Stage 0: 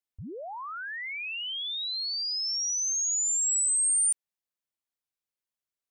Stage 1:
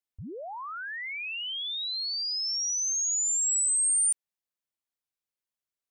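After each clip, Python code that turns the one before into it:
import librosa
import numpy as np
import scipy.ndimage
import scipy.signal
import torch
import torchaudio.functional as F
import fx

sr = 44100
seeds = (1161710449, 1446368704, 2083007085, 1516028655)

y = x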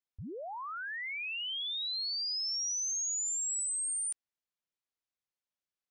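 y = scipy.signal.sosfilt(scipy.signal.butter(2, 6400.0, 'lowpass', fs=sr, output='sos'), x)
y = y * 10.0 ** (-2.5 / 20.0)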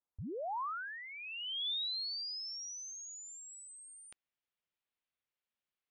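y = fx.filter_sweep_lowpass(x, sr, from_hz=1100.0, to_hz=3000.0, start_s=1.08, end_s=1.69, q=1.4)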